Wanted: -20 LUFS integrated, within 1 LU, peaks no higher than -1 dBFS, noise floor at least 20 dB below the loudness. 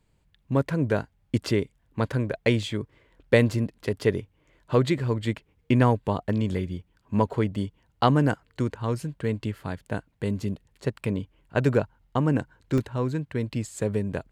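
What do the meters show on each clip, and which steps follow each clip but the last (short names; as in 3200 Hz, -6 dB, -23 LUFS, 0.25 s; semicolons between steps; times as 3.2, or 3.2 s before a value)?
dropouts 2; longest dropout 1.3 ms; loudness -27.0 LUFS; peak -4.5 dBFS; loudness target -20.0 LUFS
-> interpolate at 2.63/12.78, 1.3 ms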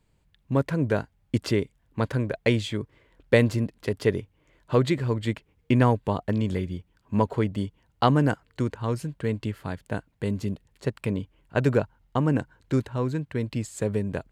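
dropouts 0; loudness -27.0 LUFS; peak -4.5 dBFS; loudness target -20.0 LUFS
-> gain +7 dB; limiter -1 dBFS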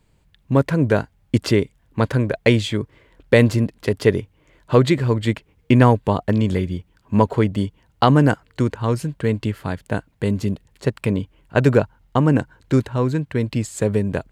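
loudness -20.0 LUFS; peak -1.0 dBFS; noise floor -60 dBFS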